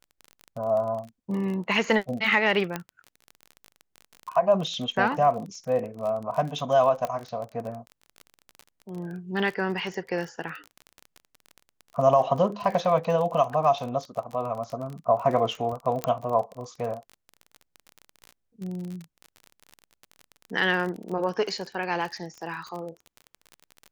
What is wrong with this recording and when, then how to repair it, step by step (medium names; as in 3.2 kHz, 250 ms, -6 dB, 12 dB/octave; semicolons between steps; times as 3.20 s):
crackle 30 per s -32 dBFS
2.76 s: pop -14 dBFS
7.05 s: pop -15 dBFS
16.04 s: pop -11 dBFS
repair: de-click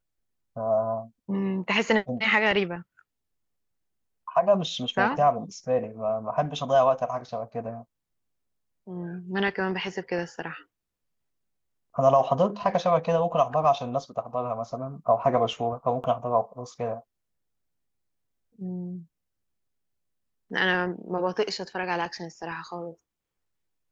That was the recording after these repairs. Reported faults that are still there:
2.76 s: pop
16.04 s: pop